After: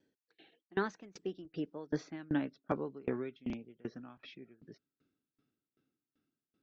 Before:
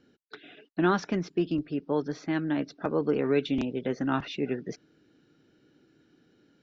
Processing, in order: Doppler pass-by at 2.11, 32 m/s, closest 21 m; dB-ramp tremolo decaying 2.6 Hz, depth 27 dB; gain +1 dB

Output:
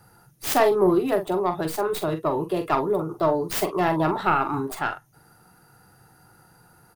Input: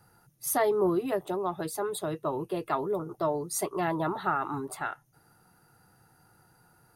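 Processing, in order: tracing distortion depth 0.29 ms; doubler 44 ms -9 dB; gain +6.5 dB

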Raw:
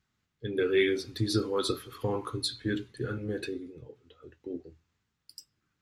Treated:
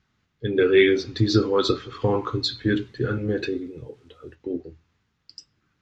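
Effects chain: downsampling 16000 Hz; 1.92–4.35 requantised 12-bit, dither none; air absorption 76 m; gain +9 dB

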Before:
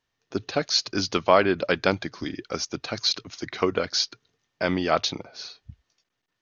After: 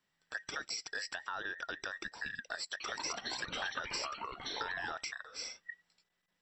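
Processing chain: band inversion scrambler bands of 2000 Hz; limiter -16 dBFS, peak gain reduction 11.5 dB; compressor, threshold -35 dBFS, peak gain reduction 13 dB; 2.63–4.92 echoes that change speed 85 ms, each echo -5 st, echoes 3; gain -2.5 dB

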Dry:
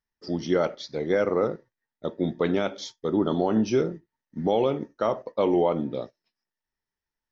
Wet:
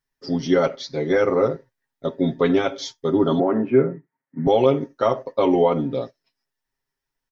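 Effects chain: 3.39–4.47 Chebyshev band-pass 130–2200 Hz, order 4; comb 7.4 ms, depth 88%; gain +3 dB

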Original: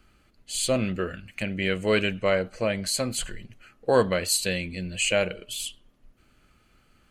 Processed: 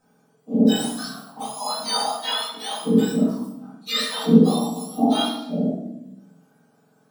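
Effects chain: spectrum mirrored in octaves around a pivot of 1400 Hz; shoebox room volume 290 m³, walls mixed, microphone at 2 m; gain -4 dB

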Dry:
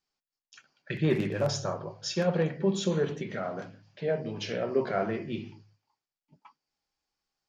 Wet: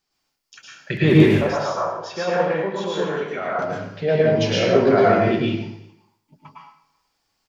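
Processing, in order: 1.26–3.59 band-pass 1100 Hz, Q 1; speakerphone echo 0.38 s, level -28 dB; plate-style reverb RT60 0.67 s, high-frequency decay 0.9×, pre-delay 95 ms, DRR -5 dB; gain +8 dB

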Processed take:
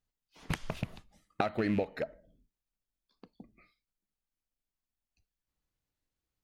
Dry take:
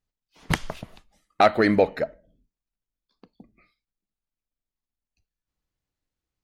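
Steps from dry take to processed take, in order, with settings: rattling part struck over -31 dBFS, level -22 dBFS; compressor 12:1, threshold -27 dBFS, peak gain reduction 16 dB; 0.69–1.83 bell 120 Hz +8 dB 2.4 oct; gain -2.5 dB

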